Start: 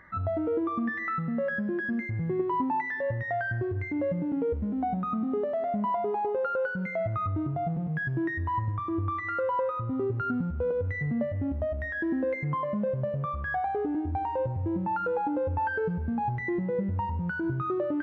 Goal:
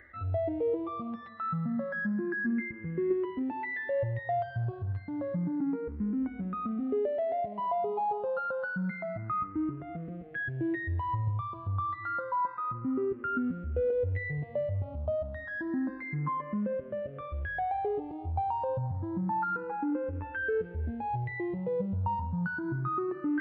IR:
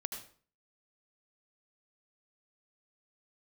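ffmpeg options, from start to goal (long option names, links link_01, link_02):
-filter_complex "[0:a]areverse,acompressor=mode=upward:threshold=-32dB:ratio=2.5,areverse,atempo=0.77,aresample=11025,aresample=44100,asplit=2[link_01][link_02];[link_02]afreqshift=0.29[link_03];[link_01][link_03]amix=inputs=2:normalize=1"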